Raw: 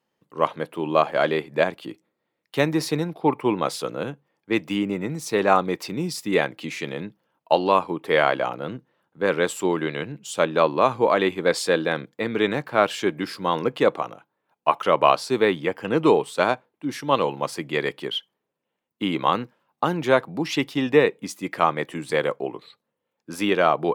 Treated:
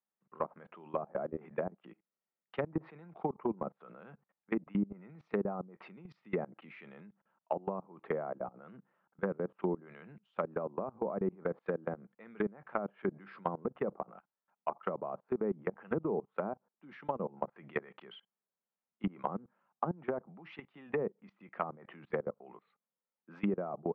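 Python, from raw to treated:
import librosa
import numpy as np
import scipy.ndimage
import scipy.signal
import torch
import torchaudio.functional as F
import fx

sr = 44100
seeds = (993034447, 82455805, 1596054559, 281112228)

y = fx.cabinet(x, sr, low_hz=160.0, low_slope=24, high_hz=2400.0, hz=(200.0, 290.0, 480.0, 740.0, 1300.0), db=(6, -10, -4, 3, 6))
y = fx.level_steps(y, sr, step_db=24)
y = fx.env_lowpass_down(y, sr, base_hz=450.0, full_db=-24.0)
y = y * 10.0 ** (-4.5 / 20.0)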